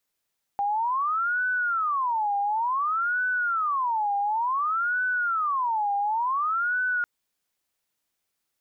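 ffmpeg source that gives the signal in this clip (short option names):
-f lavfi -i "aevalsrc='0.075*sin(2*PI*(1152.5*t-347.5/(2*PI*0.56)*sin(2*PI*0.56*t)))':d=6.45:s=44100"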